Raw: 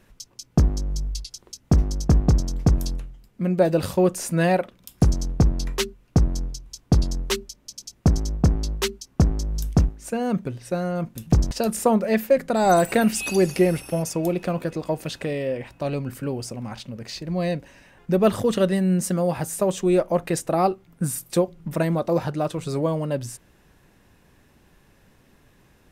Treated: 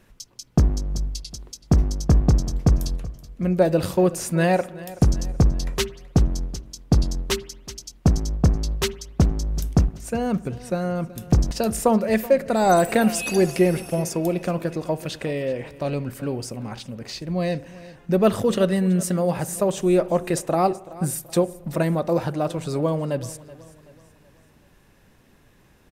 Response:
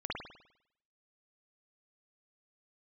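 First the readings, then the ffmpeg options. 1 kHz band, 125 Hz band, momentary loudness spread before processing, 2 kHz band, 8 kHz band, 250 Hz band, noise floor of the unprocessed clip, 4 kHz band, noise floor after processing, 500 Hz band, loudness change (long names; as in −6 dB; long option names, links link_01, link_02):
+0.5 dB, +0.5 dB, 12 LU, +0.5 dB, +0.5 dB, +0.5 dB, −59 dBFS, +0.5 dB, −56 dBFS, +0.5 dB, +0.5 dB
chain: -filter_complex "[0:a]aecho=1:1:378|756|1134|1512:0.119|0.0523|0.023|0.0101,asplit=2[link_01][link_02];[1:a]atrim=start_sample=2205,asetrate=39690,aresample=44100[link_03];[link_02][link_03]afir=irnorm=-1:irlink=0,volume=-22.5dB[link_04];[link_01][link_04]amix=inputs=2:normalize=0"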